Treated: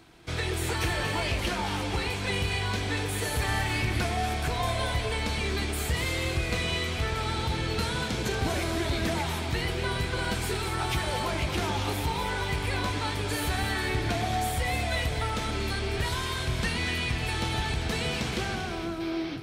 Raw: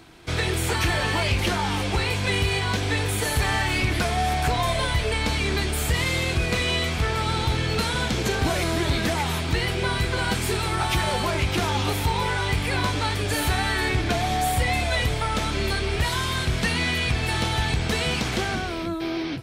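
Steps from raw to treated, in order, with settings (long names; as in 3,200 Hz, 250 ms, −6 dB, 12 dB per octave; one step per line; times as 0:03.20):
delay that swaps between a low-pass and a high-pass 118 ms, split 850 Hz, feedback 66%, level −5.5 dB
level −6 dB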